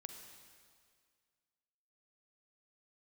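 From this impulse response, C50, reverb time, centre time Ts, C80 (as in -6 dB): 5.5 dB, 2.0 s, 44 ms, 6.5 dB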